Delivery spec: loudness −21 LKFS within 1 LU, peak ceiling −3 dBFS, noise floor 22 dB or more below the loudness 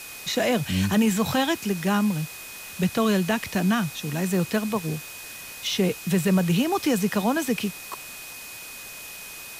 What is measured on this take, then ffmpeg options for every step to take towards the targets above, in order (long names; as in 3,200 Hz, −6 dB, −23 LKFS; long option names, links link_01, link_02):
interfering tone 2,500 Hz; level of the tone −42 dBFS; background noise floor −40 dBFS; target noise floor −47 dBFS; integrated loudness −24.5 LKFS; sample peak −11.5 dBFS; target loudness −21.0 LKFS
→ -af "bandreject=frequency=2500:width=30"
-af "afftdn=noise_reduction=7:noise_floor=-40"
-af "volume=3.5dB"